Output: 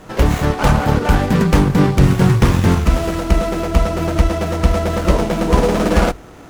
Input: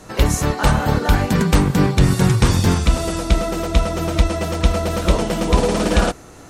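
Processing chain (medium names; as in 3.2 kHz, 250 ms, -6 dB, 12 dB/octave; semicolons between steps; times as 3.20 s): hum notches 50/100 Hz; sliding maximum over 9 samples; trim +3 dB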